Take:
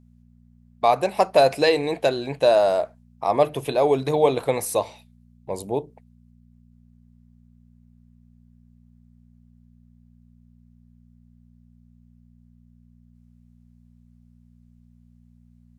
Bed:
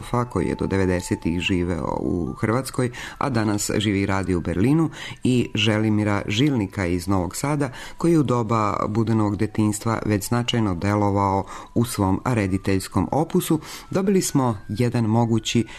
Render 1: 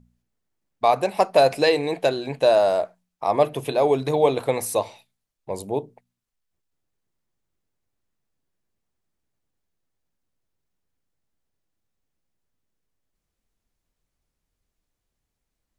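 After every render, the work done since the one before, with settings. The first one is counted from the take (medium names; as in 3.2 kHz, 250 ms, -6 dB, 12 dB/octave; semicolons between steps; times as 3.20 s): de-hum 60 Hz, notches 4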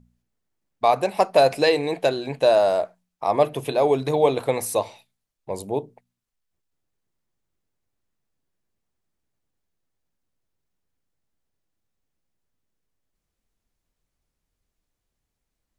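no audible change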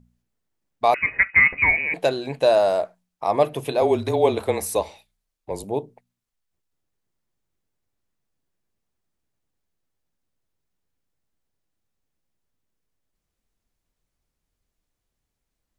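0.94–1.94 s: frequency inversion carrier 2.7 kHz; 3.81–5.64 s: frequency shift -28 Hz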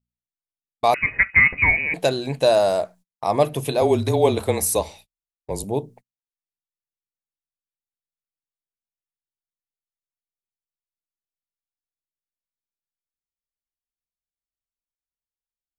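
gate -47 dBFS, range -32 dB; tone controls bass +7 dB, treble +8 dB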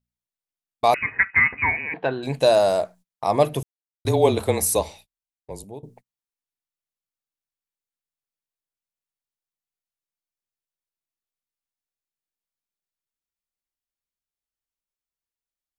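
1.03–2.23 s: cabinet simulation 110–2600 Hz, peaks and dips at 170 Hz -10 dB, 340 Hz -4 dB, 580 Hz -8 dB, 940 Hz +4 dB, 1.6 kHz +5 dB, 2.3 kHz -6 dB; 3.63–4.05 s: mute; 4.87–5.83 s: fade out, to -18 dB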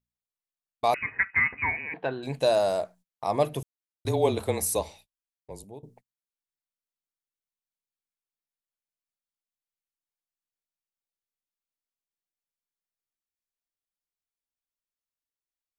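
trim -6 dB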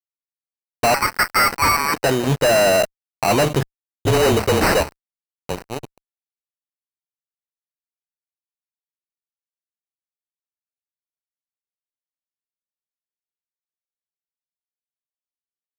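sample-and-hold 13×; fuzz box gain 33 dB, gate -43 dBFS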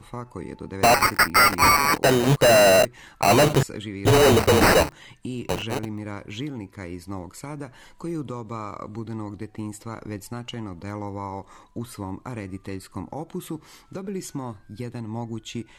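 add bed -12.5 dB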